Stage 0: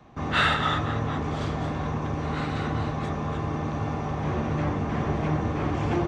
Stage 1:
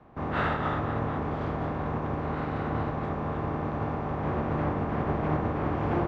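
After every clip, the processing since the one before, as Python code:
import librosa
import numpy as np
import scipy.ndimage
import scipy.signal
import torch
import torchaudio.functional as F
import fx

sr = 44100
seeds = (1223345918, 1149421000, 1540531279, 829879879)

y = fx.spec_flatten(x, sr, power=0.62)
y = scipy.signal.sosfilt(scipy.signal.butter(2, 1200.0, 'lowpass', fs=sr, output='sos'), y)
y = y * 10.0 ** (-1.0 / 20.0)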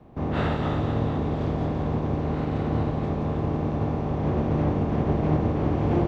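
y = fx.peak_eq(x, sr, hz=1400.0, db=-11.5, octaves=1.8)
y = fx.echo_wet_highpass(y, sr, ms=169, feedback_pct=72, hz=3400.0, wet_db=-4)
y = y * 10.0 ** (6.5 / 20.0)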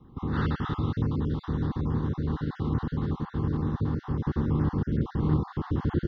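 y = fx.spec_dropout(x, sr, seeds[0], share_pct=31)
y = fx.fixed_phaser(y, sr, hz=2400.0, stages=6)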